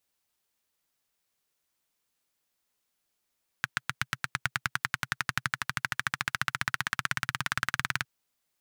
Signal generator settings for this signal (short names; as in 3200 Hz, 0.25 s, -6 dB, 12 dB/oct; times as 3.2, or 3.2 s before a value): single-cylinder engine model, changing speed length 4.41 s, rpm 900, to 2300, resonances 130/1500 Hz